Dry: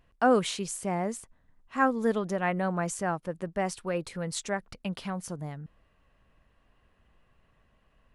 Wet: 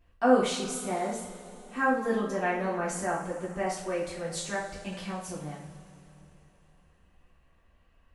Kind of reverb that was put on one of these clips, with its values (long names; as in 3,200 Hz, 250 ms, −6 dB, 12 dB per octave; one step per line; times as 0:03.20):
coupled-rooms reverb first 0.45 s, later 3.5 s, from −18 dB, DRR −7.5 dB
level −8 dB